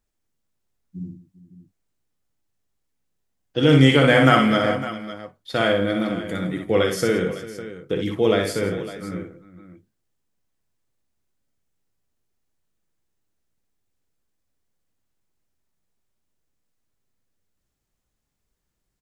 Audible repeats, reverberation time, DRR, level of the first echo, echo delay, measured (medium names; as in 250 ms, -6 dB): 4, no reverb, no reverb, -5.0 dB, 60 ms